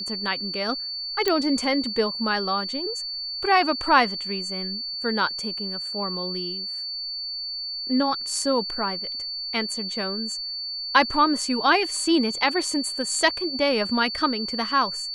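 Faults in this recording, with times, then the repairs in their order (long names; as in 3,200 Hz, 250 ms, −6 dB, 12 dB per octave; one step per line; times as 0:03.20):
whistle 4,500 Hz −29 dBFS
0:01.28: click −8 dBFS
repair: click removal
notch filter 4,500 Hz, Q 30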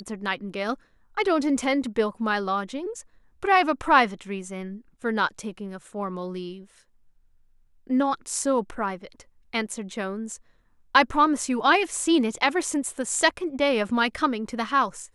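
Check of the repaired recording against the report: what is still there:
none of them is left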